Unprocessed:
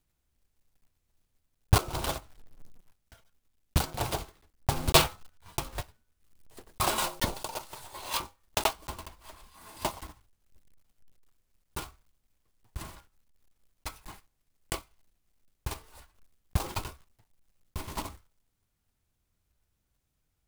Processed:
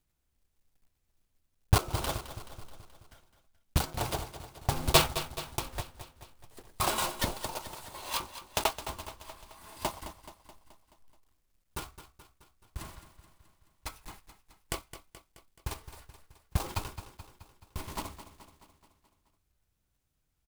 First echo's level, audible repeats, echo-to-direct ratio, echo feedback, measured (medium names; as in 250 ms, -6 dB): -12.5 dB, 5, -11.0 dB, 57%